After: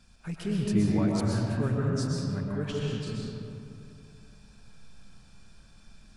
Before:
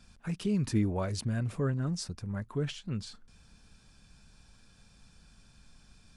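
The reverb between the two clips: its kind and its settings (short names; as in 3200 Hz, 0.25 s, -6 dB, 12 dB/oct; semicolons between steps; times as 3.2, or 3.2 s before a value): digital reverb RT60 2.7 s, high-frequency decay 0.45×, pre-delay 85 ms, DRR -3.5 dB; gain -1.5 dB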